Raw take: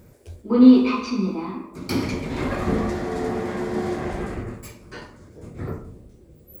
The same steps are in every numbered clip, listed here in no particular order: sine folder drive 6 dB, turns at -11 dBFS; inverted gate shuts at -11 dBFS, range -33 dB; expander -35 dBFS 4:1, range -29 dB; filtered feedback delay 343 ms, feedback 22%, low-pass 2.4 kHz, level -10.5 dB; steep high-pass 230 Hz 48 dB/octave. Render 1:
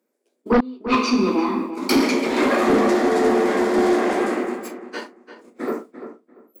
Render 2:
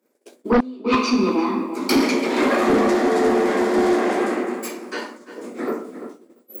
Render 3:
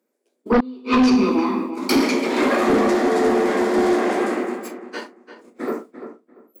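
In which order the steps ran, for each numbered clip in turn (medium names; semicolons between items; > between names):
steep high-pass > inverted gate > expander > sine folder > filtered feedback delay; steep high-pass > inverted gate > filtered feedback delay > sine folder > expander; steep high-pass > expander > filtered feedback delay > inverted gate > sine folder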